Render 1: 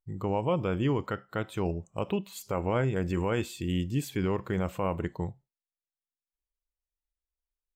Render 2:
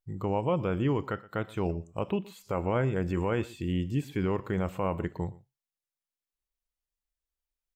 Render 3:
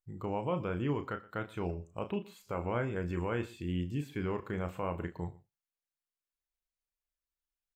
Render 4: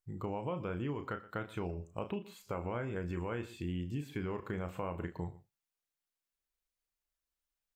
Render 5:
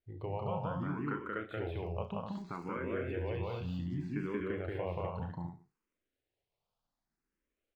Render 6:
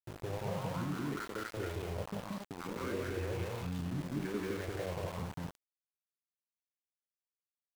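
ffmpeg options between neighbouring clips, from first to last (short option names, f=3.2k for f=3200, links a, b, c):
-filter_complex "[0:a]acrossover=split=2800[a][b];[b]acompressor=threshold=-52dB:ratio=4:attack=1:release=60[c];[a][c]amix=inputs=2:normalize=0,aecho=1:1:120:0.0891"
-filter_complex "[0:a]equalizer=f=1.7k:w=1.2:g=4,bandreject=f=1.9k:w=24,asplit=2[a][b];[b]adelay=34,volume=-9dB[c];[a][c]amix=inputs=2:normalize=0,volume=-6.5dB"
-af "acompressor=threshold=-35dB:ratio=6,volume=1.5dB"
-filter_complex "[0:a]aecho=1:1:180.8|250.7:0.891|0.562,acrossover=split=5000[a][b];[b]acrusher=samples=31:mix=1:aa=0.000001:lfo=1:lforange=18.6:lforate=1[c];[a][c]amix=inputs=2:normalize=0,asplit=2[d][e];[e]afreqshift=0.65[f];[d][f]amix=inputs=2:normalize=1,volume=1dB"
-filter_complex "[0:a]acrossover=split=820|3000[a][b][c];[c]adelay=40[d];[b]adelay=90[e];[a][e][d]amix=inputs=3:normalize=0,acompressor=mode=upward:threshold=-39dB:ratio=2.5,aeval=exprs='val(0)*gte(abs(val(0)),0.00944)':c=same"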